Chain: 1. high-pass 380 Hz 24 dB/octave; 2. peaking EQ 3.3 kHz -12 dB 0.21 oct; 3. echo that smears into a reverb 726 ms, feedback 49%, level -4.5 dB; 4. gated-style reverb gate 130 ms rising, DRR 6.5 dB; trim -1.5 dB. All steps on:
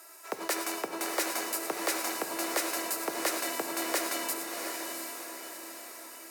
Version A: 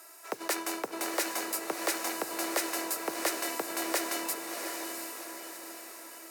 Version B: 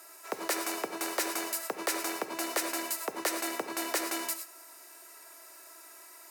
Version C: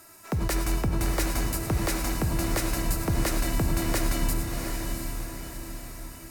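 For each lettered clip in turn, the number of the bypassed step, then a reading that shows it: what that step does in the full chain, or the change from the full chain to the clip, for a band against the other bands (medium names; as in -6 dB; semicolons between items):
4, echo-to-direct -1.0 dB to -3.5 dB; 3, echo-to-direct -1.0 dB to -6.5 dB; 1, 125 Hz band +35.5 dB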